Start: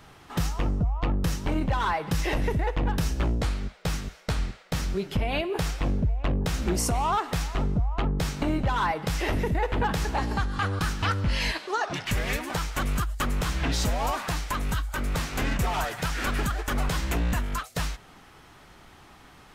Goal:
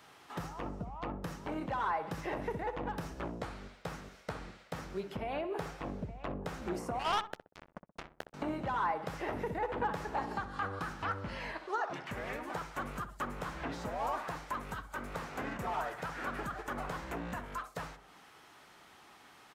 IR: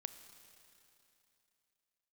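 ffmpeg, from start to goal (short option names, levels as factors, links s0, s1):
-filter_complex "[0:a]highpass=f=450:p=1,acrossover=split=1700[s0][s1];[s1]acompressor=threshold=0.00316:ratio=6[s2];[s0][s2]amix=inputs=2:normalize=0,asettb=1/sr,asplit=3[s3][s4][s5];[s3]atrim=end=6.994[s6];[s4]atrim=start=6.99:end=8.34,asetpts=PTS-STARTPTS,afade=t=in:d=0.004:c=qsin,afade=t=out:st=1.346:d=0.004:c=qsin,acrusher=bits=3:mix=0:aa=0.5[s7];[s5]atrim=start=8.336[s8];[s6][s7]acrossfade=d=0.004:c1=hsin:c2=qsin[s9];[s9][s8]acrossfade=d=0.004:c1=qsin:c2=hsin,asplit=2[s10][s11];[s11]adelay=63,lowpass=f=940:p=1,volume=0.355,asplit=2[s12][s13];[s13]adelay=63,lowpass=f=940:p=1,volume=0.38,asplit=2[s14][s15];[s15]adelay=63,lowpass=f=940:p=1,volume=0.38,asplit=2[s16][s17];[s17]adelay=63,lowpass=f=940:p=1,volume=0.38[s18];[s10][s12][s14][s16][s18]amix=inputs=5:normalize=0,volume=0.596"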